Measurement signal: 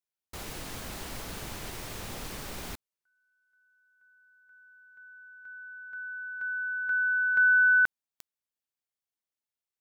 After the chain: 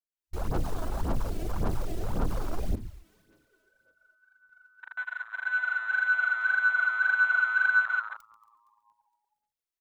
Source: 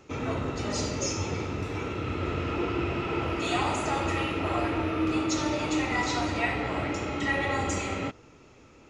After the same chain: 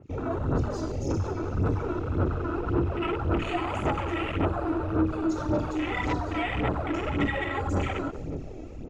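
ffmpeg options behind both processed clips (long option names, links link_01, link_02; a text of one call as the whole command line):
ffmpeg -i in.wav -filter_complex "[0:a]dynaudnorm=framelen=140:gausssize=3:maxgain=12dB,lowshelf=frequency=65:gain=7,asplit=2[link_01][link_02];[link_02]aecho=0:1:138|276:0.0708|0.0262[link_03];[link_01][link_03]amix=inputs=2:normalize=0,acompressor=threshold=-27dB:ratio=8:attack=0.18:release=85:knee=1:detection=peak,asplit=2[link_04][link_05];[link_05]asplit=6[link_06][link_07][link_08][link_09][link_10][link_11];[link_06]adelay=232,afreqshift=-110,volume=-16dB[link_12];[link_07]adelay=464,afreqshift=-220,volume=-20dB[link_13];[link_08]adelay=696,afreqshift=-330,volume=-24dB[link_14];[link_09]adelay=928,afreqshift=-440,volume=-28dB[link_15];[link_10]adelay=1160,afreqshift=-550,volume=-32.1dB[link_16];[link_11]adelay=1392,afreqshift=-660,volume=-36.1dB[link_17];[link_12][link_13][link_14][link_15][link_16][link_17]amix=inputs=6:normalize=0[link_18];[link_04][link_18]amix=inputs=2:normalize=0,aphaser=in_gain=1:out_gain=1:delay=3.1:decay=0.59:speed=1.8:type=sinusoidal,afwtdn=0.0224,adynamicequalizer=threshold=0.00631:dfrequency=3200:dqfactor=0.7:tfrequency=3200:tqfactor=0.7:attack=5:release=100:ratio=0.375:range=2:mode=boostabove:tftype=highshelf,volume=1dB" out.wav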